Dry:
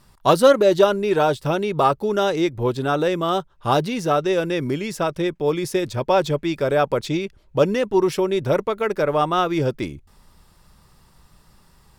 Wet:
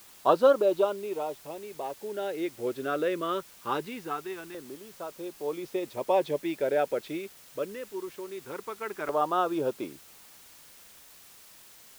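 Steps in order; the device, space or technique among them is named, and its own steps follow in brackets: shortwave radio (band-pass 330–2500 Hz; tremolo 0.31 Hz, depth 73%; LFO notch saw down 0.22 Hz 510–2400 Hz; white noise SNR 22 dB); trim -4.5 dB

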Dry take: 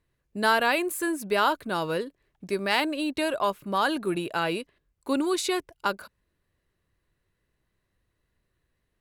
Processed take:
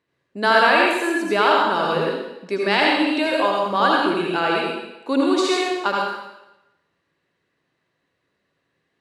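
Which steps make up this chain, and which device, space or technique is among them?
supermarket ceiling speaker (band-pass 220–5400 Hz; reverberation RT60 0.95 s, pre-delay 68 ms, DRR -2.5 dB); trim +4 dB

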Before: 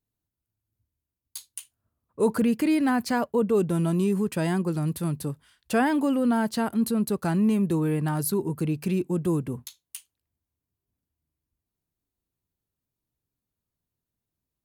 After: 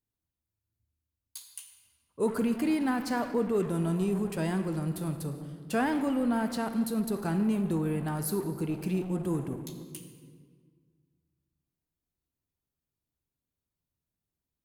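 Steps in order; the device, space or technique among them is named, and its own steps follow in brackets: saturated reverb return (on a send at -3 dB: reverberation RT60 1.8 s, pre-delay 12 ms + saturation -26 dBFS, distortion -9 dB); on the sum: trim -5.5 dB

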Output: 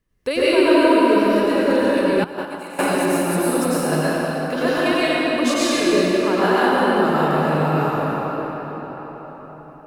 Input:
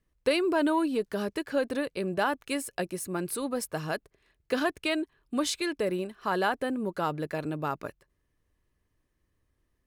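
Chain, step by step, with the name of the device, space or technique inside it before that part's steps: cathedral (reverberation RT60 5.0 s, pre-delay 90 ms, DRR -10.5 dB); 2.24–2.79 s: gate -15 dBFS, range -15 dB; trim +1.5 dB

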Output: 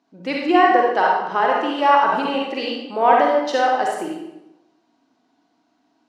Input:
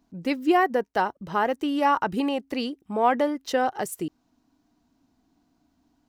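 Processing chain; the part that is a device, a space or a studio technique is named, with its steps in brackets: supermarket ceiling speaker (band-pass 350–5200 Hz; reverberation RT60 0.90 s, pre-delay 40 ms, DRR -2.5 dB); trim +3.5 dB

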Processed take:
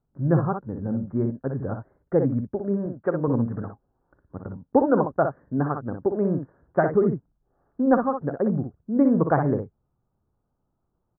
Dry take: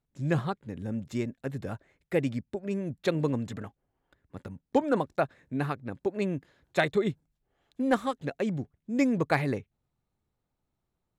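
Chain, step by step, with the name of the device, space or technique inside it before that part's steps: steep low-pass 1.5 kHz 48 dB/octave; 2.86–3.28 s: tilt EQ +2.5 dB/octave; behind a face mask (treble shelf 2.5 kHz -7.5 dB); early reflections 43 ms -17.5 dB, 60 ms -6.5 dB; trim +6 dB

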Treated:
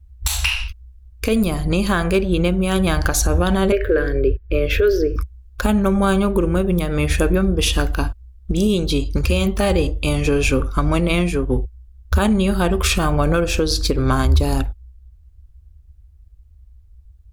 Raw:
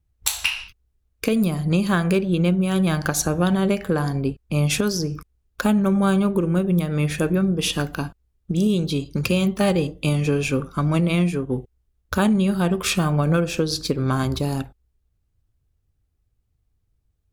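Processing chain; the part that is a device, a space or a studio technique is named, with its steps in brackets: 3.72–5.16 s: FFT filter 120 Hz 0 dB, 190 Hz -23 dB, 370 Hz +10 dB, 570 Hz +5 dB, 830 Hz -25 dB, 1.6 kHz +5 dB, 3.9 kHz -8 dB, 9.1 kHz -27 dB, 14 kHz -4 dB; car stereo with a boomy subwoofer (resonant low shelf 100 Hz +13.5 dB, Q 3; peak limiter -13.5 dBFS, peak gain reduction 10.5 dB); trim +6 dB

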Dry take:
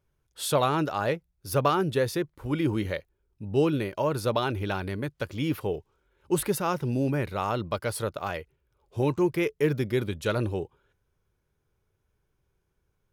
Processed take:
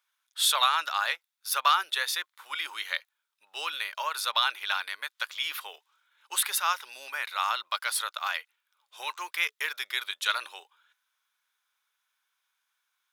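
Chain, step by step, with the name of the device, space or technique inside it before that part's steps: headphones lying on a table (high-pass 1.1 kHz 24 dB/octave; peaking EQ 3.6 kHz +7.5 dB 0.27 oct); trim +6 dB

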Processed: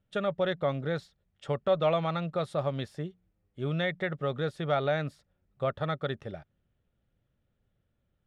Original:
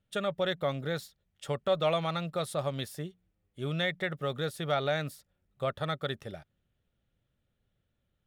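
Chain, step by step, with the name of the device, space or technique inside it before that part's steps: through cloth (low-pass 7.4 kHz 12 dB/octave; treble shelf 3.3 kHz -12 dB); trim +2.5 dB

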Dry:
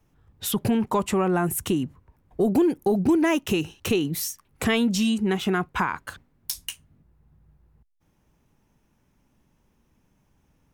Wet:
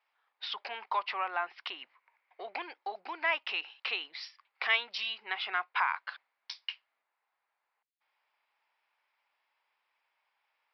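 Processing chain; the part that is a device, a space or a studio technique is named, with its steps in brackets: 1.79–2.61 s: peaking EQ 2.2 kHz +6 dB -> +12.5 dB 0.57 oct; musical greeting card (resampled via 11.025 kHz; high-pass 780 Hz 24 dB/octave; peaking EQ 2.2 kHz +6 dB 0.39 oct); trim -3.5 dB

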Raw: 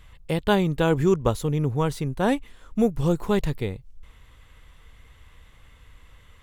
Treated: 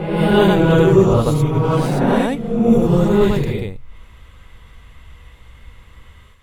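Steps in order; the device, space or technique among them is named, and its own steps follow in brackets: reverse reverb (reverse; reverberation RT60 1.5 s, pre-delay 65 ms, DRR -6.5 dB; reverse)

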